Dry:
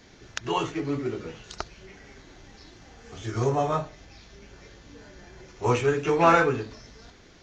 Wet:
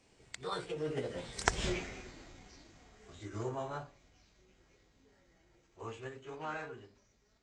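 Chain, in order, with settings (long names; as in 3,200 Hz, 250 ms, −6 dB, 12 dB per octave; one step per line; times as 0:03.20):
source passing by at 0:01.66, 27 m/s, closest 1.6 metres
formants moved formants +3 semitones
level +15 dB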